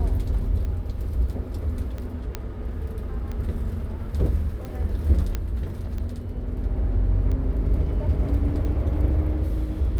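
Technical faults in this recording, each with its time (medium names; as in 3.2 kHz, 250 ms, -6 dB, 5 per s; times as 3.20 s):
tick 45 rpm -22 dBFS
2.35 s: pop -14 dBFS
5.35 s: pop -13 dBFS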